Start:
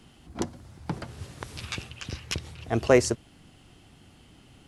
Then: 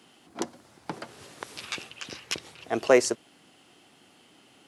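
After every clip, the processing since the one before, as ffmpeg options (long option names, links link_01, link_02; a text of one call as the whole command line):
ffmpeg -i in.wav -af "highpass=310,volume=1dB" out.wav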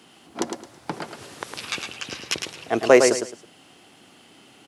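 ffmpeg -i in.wav -af "aecho=1:1:108|216|324:0.501|0.13|0.0339,volume=5dB" out.wav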